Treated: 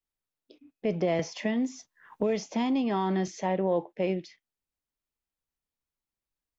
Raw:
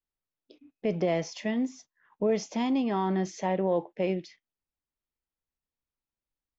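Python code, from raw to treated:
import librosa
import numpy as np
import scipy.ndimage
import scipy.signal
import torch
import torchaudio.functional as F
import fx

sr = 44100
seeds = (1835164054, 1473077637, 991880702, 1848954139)

y = fx.band_squash(x, sr, depth_pct=70, at=(1.19, 3.28))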